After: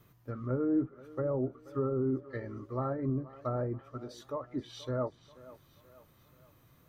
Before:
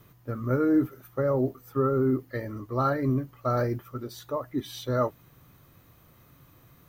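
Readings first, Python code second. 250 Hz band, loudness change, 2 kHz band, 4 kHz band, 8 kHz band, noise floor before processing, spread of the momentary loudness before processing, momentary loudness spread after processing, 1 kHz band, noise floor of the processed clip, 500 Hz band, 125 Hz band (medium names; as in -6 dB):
-6.5 dB, -7.0 dB, -11.5 dB, -7.5 dB, no reading, -58 dBFS, 11 LU, 14 LU, -10.0 dB, -64 dBFS, -6.5 dB, -6.5 dB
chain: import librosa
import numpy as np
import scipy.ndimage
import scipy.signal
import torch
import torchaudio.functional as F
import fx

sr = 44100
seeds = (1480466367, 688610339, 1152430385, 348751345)

y = fx.env_lowpass_down(x, sr, base_hz=960.0, full_db=-22.5)
y = fx.wow_flutter(y, sr, seeds[0], rate_hz=2.1, depth_cents=26.0)
y = fx.echo_thinned(y, sr, ms=481, feedback_pct=51, hz=300.0, wet_db=-17)
y = y * librosa.db_to_amplitude(-6.5)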